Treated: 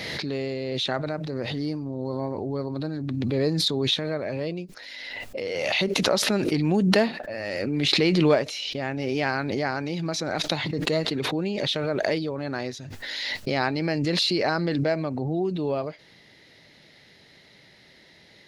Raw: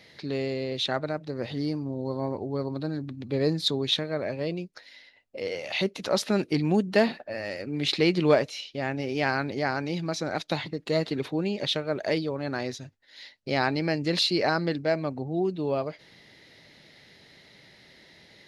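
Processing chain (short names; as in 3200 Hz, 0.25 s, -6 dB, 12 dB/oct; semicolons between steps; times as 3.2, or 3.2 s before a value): backwards sustainer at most 21 dB/s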